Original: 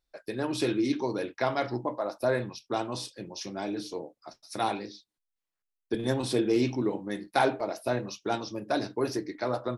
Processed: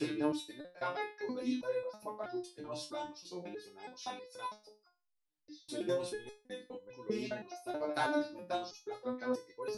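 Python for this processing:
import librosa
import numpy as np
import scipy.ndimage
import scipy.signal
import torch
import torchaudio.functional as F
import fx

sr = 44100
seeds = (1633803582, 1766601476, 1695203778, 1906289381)

y = fx.block_reorder(x, sr, ms=203.0, group=4)
y = fx.resonator_held(y, sr, hz=3.1, low_hz=150.0, high_hz=500.0)
y = F.gain(torch.from_numpy(y), 4.5).numpy()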